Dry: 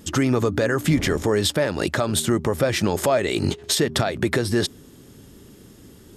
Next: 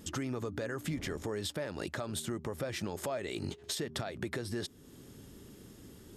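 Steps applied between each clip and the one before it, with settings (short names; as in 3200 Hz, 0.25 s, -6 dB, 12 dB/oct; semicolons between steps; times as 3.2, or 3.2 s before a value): compressor 2:1, threshold -36 dBFS, peak gain reduction 12 dB; gain -6 dB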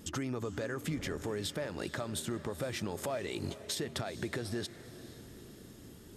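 diffused feedback echo 0.454 s, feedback 49%, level -15 dB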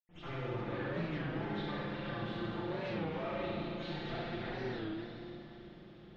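minimum comb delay 5.8 ms; reverb RT60 2.6 s, pre-delay 77 ms; record warp 33 1/3 rpm, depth 160 cents; gain +17 dB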